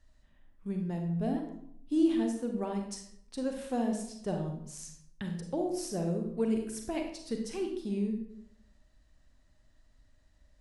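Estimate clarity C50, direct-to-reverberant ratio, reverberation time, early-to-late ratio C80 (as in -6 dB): 5.0 dB, 3.0 dB, 0.70 s, 8.5 dB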